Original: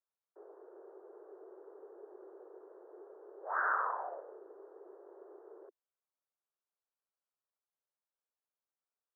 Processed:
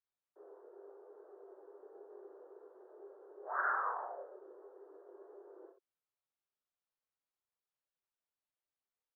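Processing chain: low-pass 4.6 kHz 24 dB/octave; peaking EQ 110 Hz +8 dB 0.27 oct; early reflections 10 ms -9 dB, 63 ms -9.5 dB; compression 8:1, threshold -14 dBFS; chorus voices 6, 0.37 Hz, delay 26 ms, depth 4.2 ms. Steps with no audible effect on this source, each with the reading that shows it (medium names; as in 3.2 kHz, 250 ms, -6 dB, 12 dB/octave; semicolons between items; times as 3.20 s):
low-pass 4.6 kHz: input has nothing above 2 kHz; peaking EQ 110 Hz: input has nothing below 290 Hz; compression, threshold -14 dBFS: peak at its input -20.0 dBFS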